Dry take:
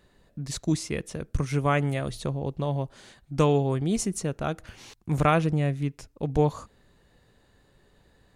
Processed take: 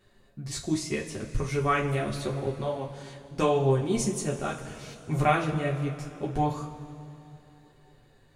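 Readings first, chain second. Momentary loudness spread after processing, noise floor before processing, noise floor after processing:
17 LU, -63 dBFS, -59 dBFS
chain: chorus voices 2, 0.81 Hz, delay 11 ms, depth 3.6 ms; two-slope reverb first 0.23 s, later 3.1 s, from -18 dB, DRR -0.5 dB

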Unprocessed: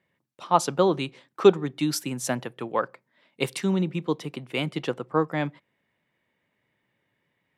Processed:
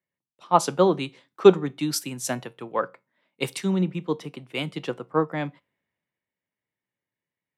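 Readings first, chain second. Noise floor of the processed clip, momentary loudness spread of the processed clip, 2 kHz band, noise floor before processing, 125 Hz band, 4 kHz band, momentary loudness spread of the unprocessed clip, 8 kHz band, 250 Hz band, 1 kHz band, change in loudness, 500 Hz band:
under -85 dBFS, 15 LU, -1.0 dB, -76 dBFS, 0.0 dB, 0.0 dB, 11 LU, +1.5 dB, +0.5 dB, +1.0 dB, +1.5 dB, +2.0 dB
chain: resonator 92 Hz, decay 0.24 s, harmonics all, mix 40%; three-band expander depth 40%; gain +2.5 dB

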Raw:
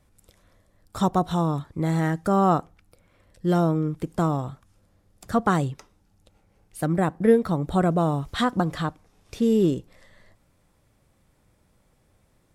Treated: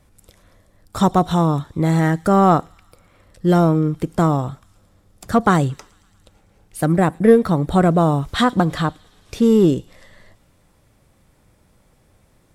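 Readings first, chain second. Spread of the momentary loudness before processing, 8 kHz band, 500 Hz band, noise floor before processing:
10 LU, +7.0 dB, +6.5 dB, -65 dBFS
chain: in parallel at -8 dB: hard clip -16 dBFS, distortion -13 dB; on the sum: thin delay 0.112 s, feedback 72%, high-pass 2900 Hz, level -21.5 dB; gain +4 dB

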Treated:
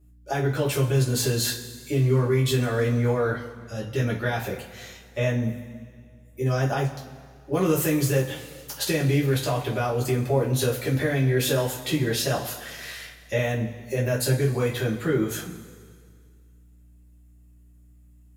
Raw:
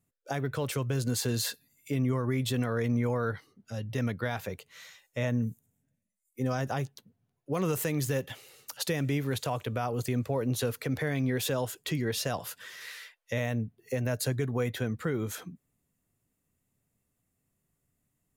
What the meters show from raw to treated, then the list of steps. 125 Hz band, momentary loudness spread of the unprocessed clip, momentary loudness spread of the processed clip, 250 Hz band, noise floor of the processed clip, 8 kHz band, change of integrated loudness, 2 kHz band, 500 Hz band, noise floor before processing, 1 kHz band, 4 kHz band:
+7.5 dB, 13 LU, 14 LU, +5.0 dB, -53 dBFS, +6.5 dB, +6.5 dB, +6.5 dB, +8.0 dB, -80 dBFS, +5.5 dB, +6.5 dB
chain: hum 60 Hz, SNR 30 dB; two-slope reverb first 0.26 s, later 2 s, from -18 dB, DRR -5.5 dB

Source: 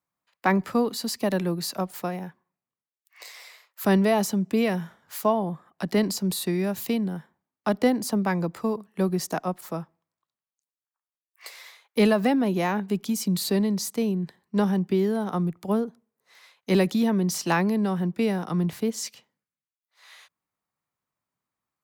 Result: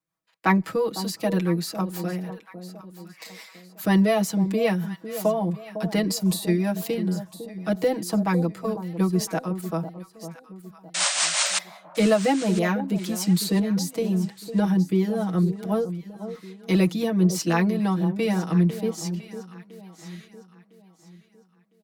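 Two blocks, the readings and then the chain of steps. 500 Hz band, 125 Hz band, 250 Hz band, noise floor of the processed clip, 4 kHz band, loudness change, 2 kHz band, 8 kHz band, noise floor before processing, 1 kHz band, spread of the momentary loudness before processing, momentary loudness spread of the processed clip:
+1.0 dB, +4.0 dB, +1.5 dB, -59 dBFS, +4.5 dB, +1.5 dB, +2.0 dB, +5.5 dB, under -85 dBFS, 0.0 dB, 12 LU, 19 LU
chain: comb 6.2 ms, depth 100%; painted sound noise, 10.94–11.59, 540–9300 Hz -21 dBFS; rotary speaker horn 5.5 Hz, later 0.7 Hz, at 17.4; echo with dull and thin repeats by turns 0.503 s, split 960 Hz, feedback 57%, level -10.5 dB

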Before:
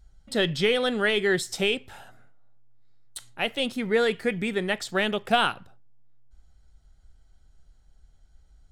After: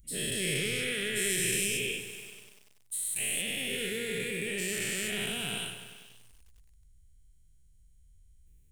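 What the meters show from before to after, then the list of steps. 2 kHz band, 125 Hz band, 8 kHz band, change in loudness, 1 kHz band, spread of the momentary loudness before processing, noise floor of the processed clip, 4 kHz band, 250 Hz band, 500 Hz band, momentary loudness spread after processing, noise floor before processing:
-5.0 dB, -4.0 dB, +10.0 dB, -5.5 dB, -21.0 dB, 8 LU, -60 dBFS, -4.0 dB, -9.0 dB, -11.5 dB, 11 LU, -58 dBFS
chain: spectral dilation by 0.48 s; low shelf 130 Hz -7.5 dB; in parallel at -10 dB: soft clip -14 dBFS, distortion -13 dB; on the sum: EQ curve 140 Hz 0 dB, 250 Hz -12 dB, 410 Hz -11 dB, 730 Hz -28 dB, 1300 Hz -26 dB, 2300 Hz -6 dB, 4700 Hz -13 dB, 9400 Hz +7 dB; on a send: delay with a stepping band-pass 0.106 s, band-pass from 630 Hz, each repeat 0.7 oct, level -10 dB; on the sum: lo-fi delay 96 ms, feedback 80%, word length 7-bit, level -12 dB; gain -7.5 dB

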